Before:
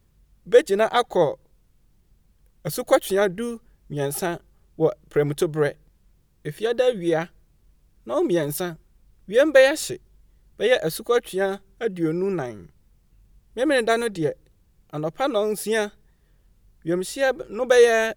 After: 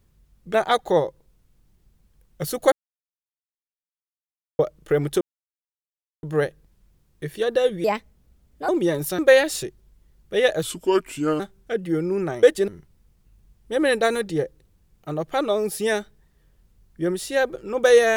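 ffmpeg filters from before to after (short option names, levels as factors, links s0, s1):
-filter_complex "[0:a]asplit=12[s0][s1][s2][s3][s4][s5][s6][s7][s8][s9][s10][s11];[s0]atrim=end=0.542[s12];[s1]atrim=start=0.788:end=2.97,asetpts=PTS-STARTPTS,afade=t=out:st=2.178:d=0.004:c=hsin[s13];[s2]atrim=start=2.97:end=4.84,asetpts=PTS-STARTPTS,volume=0[s14];[s3]atrim=start=4.84:end=5.46,asetpts=PTS-STARTPTS,afade=t=in:d=0.004:c=hsin,afade=t=out:st=0.616:d=0.004:c=hsin,apad=pad_dur=1.02[s15];[s4]atrim=start=5.46:end=7.074,asetpts=PTS-STARTPTS,afade=t=in:d=0.004:c=hsin[s16];[s5]atrim=start=7.07:end=8.17,asetpts=PTS-STARTPTS,asetrate=57330,aresample=44100,atrim=end_sample=37315,asetpts=PTS-STARTPTS[s17];[s6]atrim=start=8.166:end=8.672[s18];[s7]atrim=start=9.458:end=10.904[s19];[s8]atrim=start=10.9:end=11.51,asetpts=PTS-STARTPTS,asetrate=34839,aresample=44100[s20];[s9]atrim=start=11.506:end=12.542[s21];[s10]atrim=start=0.538:end=0.792[s22];[s11]atrim=start=12.538[s23];[s13][s14][s15][s16]concat=n=4:v=0:a=1[s24];[s12][s24]acrossfade=d=0.004:c1=hsin:c2=hsin[s25];[s25][s17]acrossfade=d=0.004:c1=hsin:c2=hsin[s26];[s26][s18]acrossfade=d=0.004:c1=hsin:c2=hsin[s27];[s27][s19]acrossfade=d=0.004:c1=hsin:c2=hsin[s28];[s28][s20]acrossfade=d=0.004:c1=hsin:c2=hsin[s29];[s29][s21]acrossfade=d=0.004:c1=hsin:c2=hsin[s30];[s30][s22]acrossfade=d=0.004:c1=hsin:c2=hsin[s31];[s31][s23]acrossfade=d=0.004:c1=hsin:c2=hsin"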